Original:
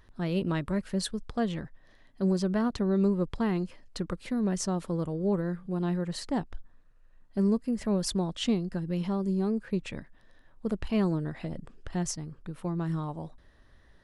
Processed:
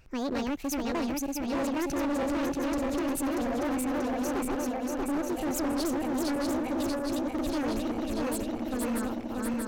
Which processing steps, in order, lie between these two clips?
feedback delay that plays each chunk backwards 461 ms, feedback 79%, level −2 dB
gain into a clipping stage and back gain 27 dB
change of speed 1.45×

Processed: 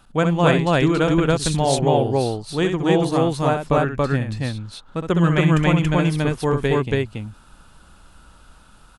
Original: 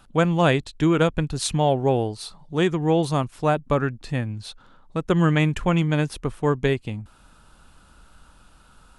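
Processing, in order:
loudspeakers that aren't time-aligned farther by 22 metres −7 dB, 96 metres 0 dB

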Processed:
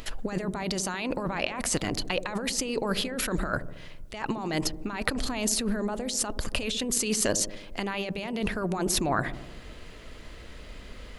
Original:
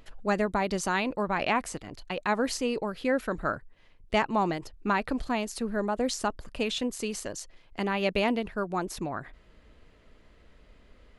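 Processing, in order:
high-shelf EQ 2,700 Hz +9 dB
compressor whose output falls as the input rises −35 dBFS, ratio −1
delay with a low-pass on its return 74 ms, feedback 65%, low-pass 550 Hz, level −9.5 dB
level +5 dB

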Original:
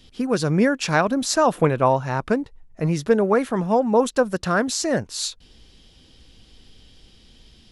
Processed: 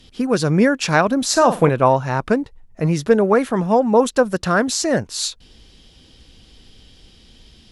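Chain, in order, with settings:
0:01.29–0:01.69: flutter between parallel walls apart 8 metres, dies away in 0.27 s
harmonic generator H 2 −32 dB, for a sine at −4.5 dBFS
level +3.5 dB

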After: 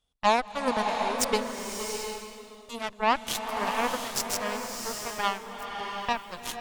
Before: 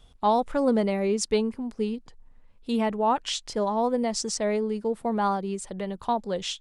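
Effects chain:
spectral tilt +1.5 dB per octave
harmonic generator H 6 −20 dB, 7 −16 dB, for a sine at −10 dBFS
slow-attack reverb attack 720 ms, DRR 3 dB

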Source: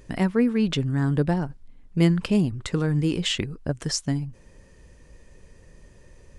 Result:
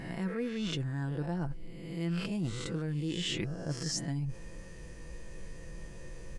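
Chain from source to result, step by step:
peak hold with a rise ahead of every peak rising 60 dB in 0.65 s
comb filter 6 ms, depth 46%
reversed playback
downward compressor 6 to 1, threshold −35 dBFS, peak gain reduction 22.5 dB
reversed playback
level +2 dB

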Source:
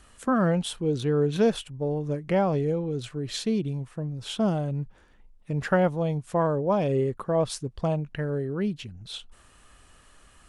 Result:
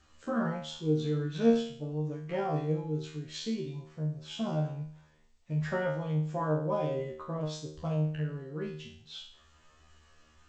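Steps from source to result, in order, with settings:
spectral magnitudes quantised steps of 15 dB
tuned comb filter 77 Hz, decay 0.53 s, harmonics all, mix 100%
level +5 dB
G.722 64 kbit/s 16,000 Hz

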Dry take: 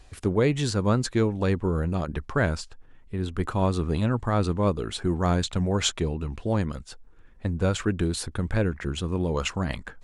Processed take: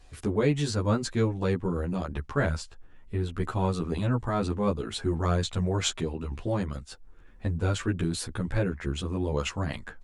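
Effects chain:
camcorder AGC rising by 6.6 dB per second
barber-pole flanger 11.9 ms +0.44 Hz

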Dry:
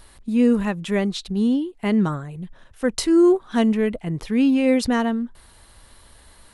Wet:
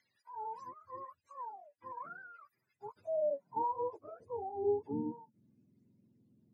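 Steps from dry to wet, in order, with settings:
frequency axis turned over on the octave scale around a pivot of 460 Hz
thirty-one-band graphic EQ 800 Hz −6 dB, 1,250 Hz −7 dB, 3,150 Hz −9 dB
band-pass filter sweep 1,900 Hz → 250 Hz, 0:02.41–0:05.18
level −7.5 dB

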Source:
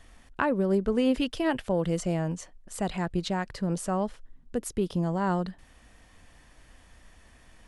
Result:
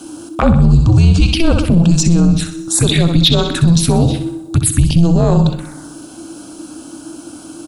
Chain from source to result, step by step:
dense smooth reverb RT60 1.4 s, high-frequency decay 0.9×, DRR 18 dB
phaser swept by the level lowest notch 360 Hz, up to 2,300 Hz, full sweep at −24.5 dBFS
0:02.29–0:04.66: parametric band 4,100 Hz +12 dB 0.35 octaves
repeating echo 63 ms, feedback 48%, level −10 dB
frequency shifter −340 Hz
high-shelf EQ 6,400 Hz +10.5 dB
soft clipping −18 dBFS, distortion −20 dB
boost into a limiter +23.5 dB
level −2 dB

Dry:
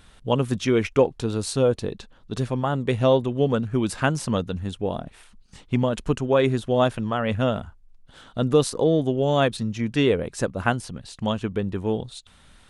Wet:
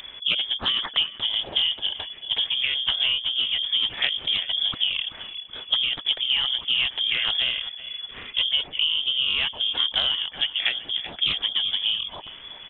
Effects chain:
downward compressor 8 to 1, threshold −30 dBFS, peak gain reduction 17 dB
pitch-shifted copies added −7 semitones −4 dB, +5 semitones −16 dB
on a send: feedback echo with a high-pass in the loop 380 ms, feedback 44%, level −14 dB
on the sum: voice inversion scrambler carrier 3,400 Hz
highs frequency-modulated by the lows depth 0.27 ms
level +7.5 dB

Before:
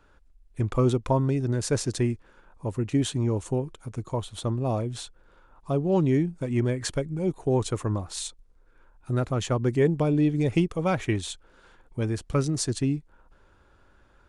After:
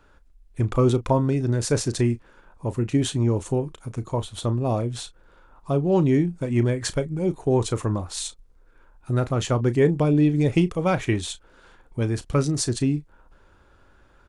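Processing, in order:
double-tracking delay 34 ms −14 dB
level +3 dB

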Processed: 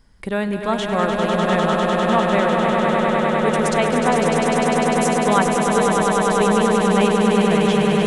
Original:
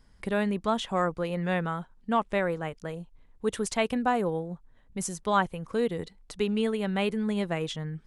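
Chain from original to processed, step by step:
echo that builds up and dies away 100 ms, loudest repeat 8, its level −5 dB
level +5 dB

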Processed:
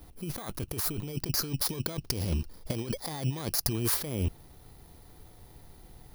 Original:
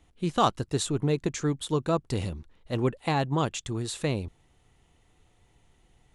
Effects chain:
samples in bit-reversed order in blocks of 16 samples
0:01.05–0:03.73: parametric band 5,000 Hz +9.5 dB 0.51 octaves
compressor whose output falls as the input rises −36 dBFS, ratio −1
level +3.5 dB

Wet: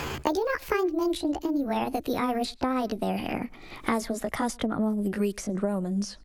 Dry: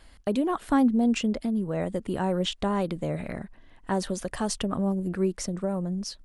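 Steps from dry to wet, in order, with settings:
pitch glide at a constant tempo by +7.5 semitones ending unshifted
slap from a distant wall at 18 metres, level −29 dB
multiband upward and downward compressor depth 100%

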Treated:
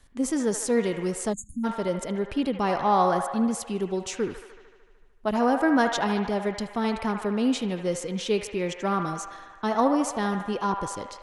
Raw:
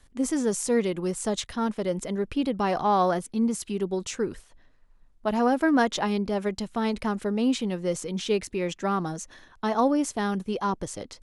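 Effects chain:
delay with a band-pass on its return 75 ms, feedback 72%, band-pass 1,300 Hz, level −6 dB
time-frequency box erased 0:01.33–0:01.64, 320–6,400 Hz

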